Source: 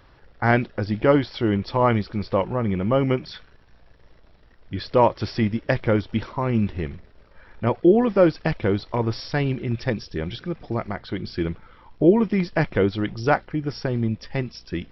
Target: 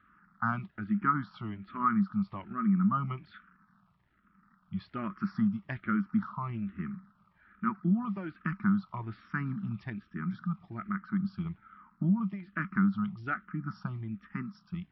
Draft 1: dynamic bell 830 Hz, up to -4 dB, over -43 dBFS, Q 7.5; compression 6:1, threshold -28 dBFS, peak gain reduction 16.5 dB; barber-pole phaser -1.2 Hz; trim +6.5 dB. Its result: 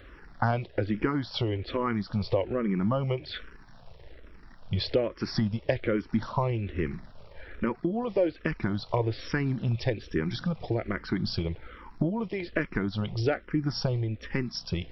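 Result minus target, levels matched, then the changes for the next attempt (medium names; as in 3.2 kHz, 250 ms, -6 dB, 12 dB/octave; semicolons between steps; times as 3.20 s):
500 Hz band +18.0 dB
add after dynamic bell: two resonant band-passes 500 Hz, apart 2.7 oct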